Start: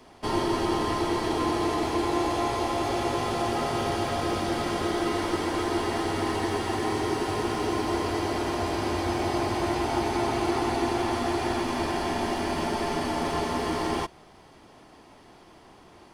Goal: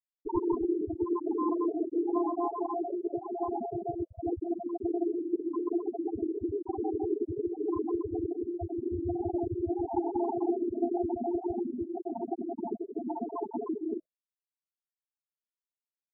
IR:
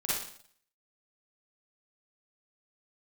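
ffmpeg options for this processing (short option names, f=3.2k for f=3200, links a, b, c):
-af "afftfilt=real='re*gte(hypot(re,im),0.224)':imag='im*gte(hypot(re,im),0.224)':win_size=1024:overlap=0.75,afftfilt=real='re*lt(b*sr/1024,630*pow(2000/630,0.5+0.5*sin(2*PI*0.91*pts/sr)))':imag='im*lt(b*sr/1024,630*pow(2000/630,0.5+0.5*sin(2*PI*0.91*pts/sr)))':win_size=1024:overlap=0.75"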